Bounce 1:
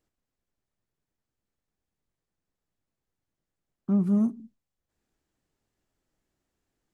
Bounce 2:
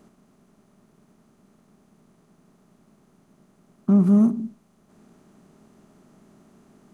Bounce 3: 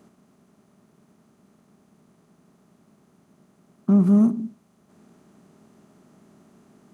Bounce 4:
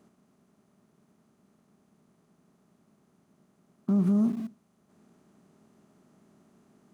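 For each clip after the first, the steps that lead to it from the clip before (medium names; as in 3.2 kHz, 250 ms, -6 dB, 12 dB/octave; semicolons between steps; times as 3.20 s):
spectral levelling over time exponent 0.6; trim +6 dB
high-pass 63 Hz
in parallel at -9.5 dB: small samples zeroed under -30 dBFS; on the sum: peak limiter -11.5 dBFS, peak gain reduction 5 dB; trim -7 dB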